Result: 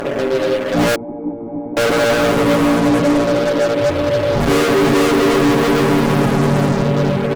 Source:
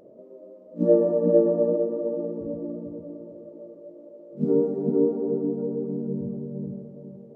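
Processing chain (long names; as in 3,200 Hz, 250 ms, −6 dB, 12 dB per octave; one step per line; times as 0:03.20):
0:03.79–0:04.52: sub-octave generator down 2 octaves, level 0 dB
fuzz pedal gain 48 dB, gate −54 dBFS
0:00.95–0:01.77: formant resonators in series u
comb filter 7.2 ms, depth 71%
level −1 dB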